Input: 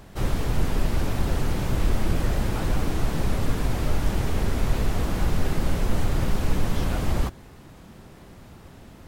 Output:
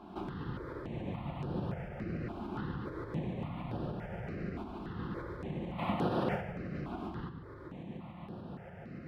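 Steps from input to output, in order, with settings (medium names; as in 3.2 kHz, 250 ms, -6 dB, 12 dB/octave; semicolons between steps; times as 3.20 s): 5.78–6.40 s: spectral peaks clipped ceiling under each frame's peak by 25 dB; tremolo saw up 6.9 Hz, depth 40%; compression 3:1, threshold -36 dBFS, peak gain reduction 16 dB; high-pass 140 Hz 12 dB/octave; distance through air 410 m; simulated room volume 2800 m³, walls mixed, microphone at 0.89 m; stepped phaser 3.5 Hz 510–7200 Hz; trim +6 dB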